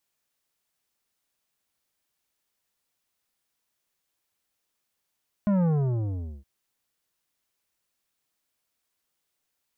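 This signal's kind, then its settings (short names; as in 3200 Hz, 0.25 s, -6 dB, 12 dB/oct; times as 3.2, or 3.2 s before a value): sub drop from 210 Hz, over 0.97 s, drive 11 dB, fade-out 0.80 s, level -21 dB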